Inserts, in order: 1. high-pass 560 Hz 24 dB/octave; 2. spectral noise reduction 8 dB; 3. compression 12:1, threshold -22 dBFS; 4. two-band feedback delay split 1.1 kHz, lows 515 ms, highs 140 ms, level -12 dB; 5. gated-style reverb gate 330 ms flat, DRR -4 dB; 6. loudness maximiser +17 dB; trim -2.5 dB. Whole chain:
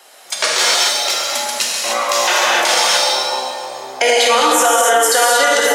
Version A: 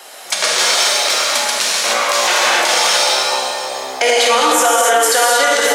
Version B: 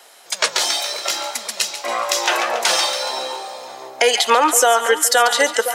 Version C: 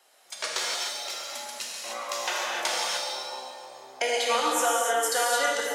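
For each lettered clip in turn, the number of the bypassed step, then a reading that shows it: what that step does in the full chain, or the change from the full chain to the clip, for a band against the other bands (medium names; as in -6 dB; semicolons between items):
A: 2, momentary loudness spread change -2 LU; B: 5, momentary loudness spread change +5 LU; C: 6, crest factor change +5.5 dB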